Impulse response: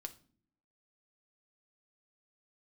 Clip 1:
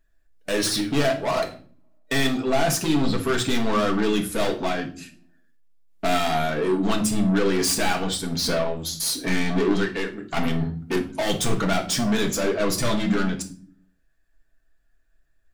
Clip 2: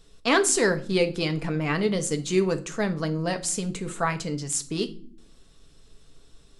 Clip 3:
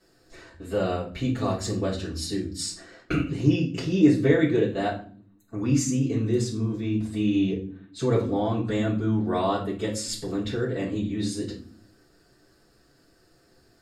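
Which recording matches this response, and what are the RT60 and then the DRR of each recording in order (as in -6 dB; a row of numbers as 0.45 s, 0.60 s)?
2; no single decay rate, no single decay rate, no single decay rate; 1.0 dB, 7.5 dB, -8.0 dB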